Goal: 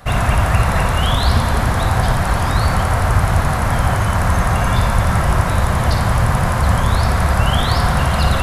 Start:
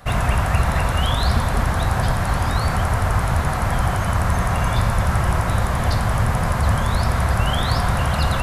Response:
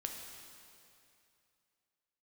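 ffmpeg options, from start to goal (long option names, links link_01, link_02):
-filter_complex "[0:a]asplit=2[link_01][link_02];[1:a]atrim=start_sample=2205,asetrate=48510,aresample=44100,adelay=58[link_03];[link_02][link_03]afir=irnorm=-1:irlink=0,volume=-4dB[link_04];[link_01][link_04]amix=inputs=2:normalize=0,volume=3dB"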